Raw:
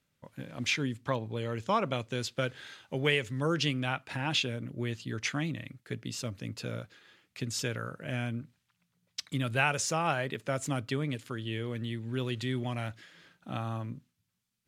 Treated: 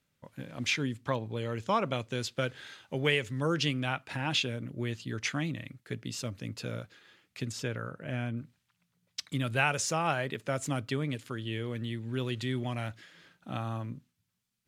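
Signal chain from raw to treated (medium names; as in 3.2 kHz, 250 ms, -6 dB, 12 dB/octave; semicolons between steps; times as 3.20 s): 7.52–8.37 s: treble shelf 3.3 kHz -9 dB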